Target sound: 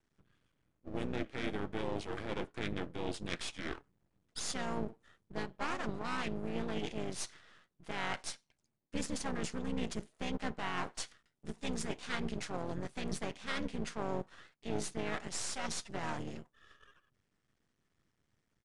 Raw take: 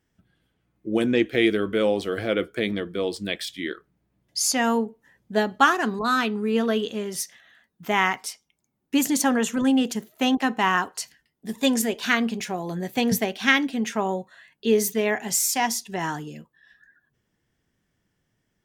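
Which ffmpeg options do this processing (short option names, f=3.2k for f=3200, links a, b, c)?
-filter_complex "[0:a]areverse,acompressor=threshold=-31dB:ratio=4,areverse,asplit=3[a][b][c];[b]asetrate=29433,aresample=44100,atempo=1.49831,volume=-10dB[d];[c]asetrate=33038,aresample=44100,atempo=1.33484,volume=-4dB[e];[a][d][e]amix=inputs=3:normalize=0,aeval=exprs='max(val(0),0)':c=same,aresample=22050,aresample=44100,volume=-3.5dB"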